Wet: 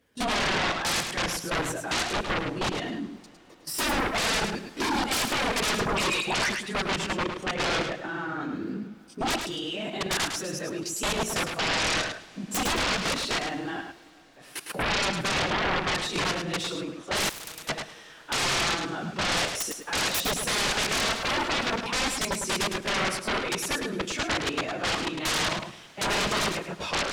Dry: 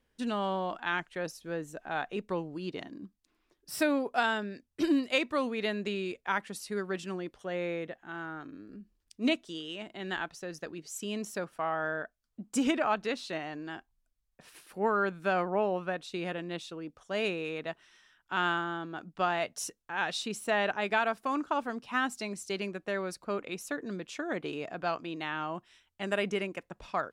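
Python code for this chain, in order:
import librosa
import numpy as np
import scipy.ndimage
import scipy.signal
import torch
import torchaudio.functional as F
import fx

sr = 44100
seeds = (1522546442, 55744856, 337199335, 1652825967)

y = fx.phase_scramble(x, sr, seeds[0], window_ms=50)
y = scipy.signal.sosfilt(scipy.signal.butter(2, 97.0, 'highpass', fs=sr, output='sos'), y)
y = fx.level_steps(y, sr, step_db=18)
y = fx.dispersion(y, sr, late='highs', ms=144.0, hz=1400.0, at=(5.81, 6.68))
y = fx.fold_sine(y, sr, drive_db=17, ceiling_db=-23.5)
y = fx.echo_feedback(y, sr, ms=106, feedback_pct=17, wet_db=-6.5)
y = fx.rev_plate(y, sr, seeds[1], rt60_s=4.6, hf_ratio=0.95, predelay_ms=0, drr_db=19.5)
y = fx.spectral_comp(y, sr, ratio=4.0, at=(17.29, 17.69))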